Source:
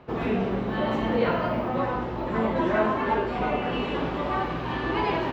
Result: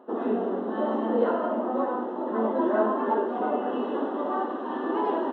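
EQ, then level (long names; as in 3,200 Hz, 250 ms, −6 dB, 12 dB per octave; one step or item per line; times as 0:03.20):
moving average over 19 samples
linear-phase brick-wall high-pass 210 Hz
+1.5 dB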